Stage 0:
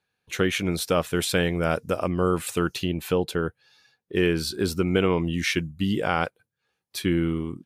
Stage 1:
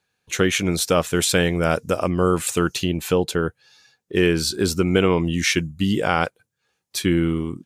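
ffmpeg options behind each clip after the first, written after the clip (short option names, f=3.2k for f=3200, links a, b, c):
-af "equalizer=f=6.9k:t=o:w=0.76:g=7,volume=4dB"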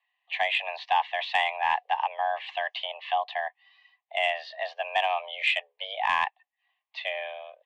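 -af "highpass=f=510:t=q:w=0.5412,highpass=f=510:t=q:w=1.307,lowpass=f=3k:t=q:w=0.5176,lowpass=f=3k:t=q:w=0.7071,lowpass=f=3k:t=q:w=1.932,afreqshift=270,asuperstop=centerf=1400:order=4:qfactor=2.4,acontrast=88,volume=-8dB"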